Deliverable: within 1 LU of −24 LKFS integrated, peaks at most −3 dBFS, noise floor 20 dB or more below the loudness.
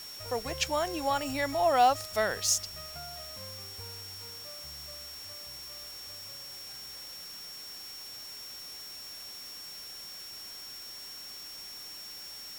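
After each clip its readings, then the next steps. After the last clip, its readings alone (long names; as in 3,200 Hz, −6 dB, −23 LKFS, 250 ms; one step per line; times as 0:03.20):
interfering tone 5,500 Hz; level of the tone −43 dBFS; background noise floor −44 dBFS; target noise floor −54 dBFS; integrated loudness −34.0 LKFS; sample peak −12.5 dBFS; target loudness −24.0 LKFS
→ notch filter 5,500 Hz, Q 30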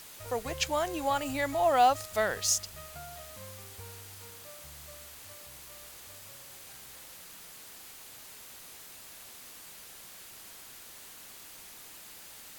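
interfering tone none found; background noise floor −49 dBFS; target noise floor −50 dBFS
→ broadband denoise 6 dB, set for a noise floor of −49 dBFS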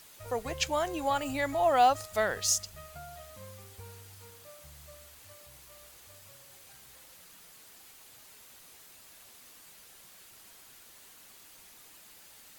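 background noise floor −55 dBFS; integrated loudness −29.0 LKFS; sample peak −13.0 dBFS; target loudness −24.0 LKFS
→ level +5 dB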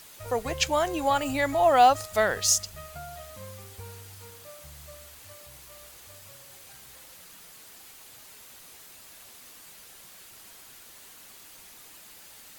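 integrated loudness −24.0 LKFS; sample peak −8.0 dBFS; background noise floor −50 dBFS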